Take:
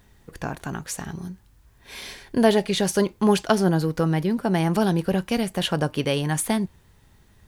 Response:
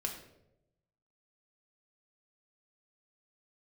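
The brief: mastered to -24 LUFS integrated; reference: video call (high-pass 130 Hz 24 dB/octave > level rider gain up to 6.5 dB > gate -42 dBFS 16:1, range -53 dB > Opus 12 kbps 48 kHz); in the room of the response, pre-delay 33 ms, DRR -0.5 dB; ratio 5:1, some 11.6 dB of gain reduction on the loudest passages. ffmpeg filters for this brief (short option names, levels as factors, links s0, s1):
-filter_complex "[0:a]acompressor=threshold=0.0562:ratio=5,asplit=2[s0][s1];[1:a]atrim=start_sample=2205,adelay=33[s2];[s1][s2]afir=irnorm=-1:irlink=0,volume=0.891[s3];[s0][s3]amix=inputs=2:normalize=0,highpass=f=130:w=0.5412,highpass=f=130:w=1.3066,dynaudnorm=m=2.11,agate=range=0.00224:threshold=0.00794:ratio=16,volume=1.58" -ar 48000 -c:a libopus -b:a 12k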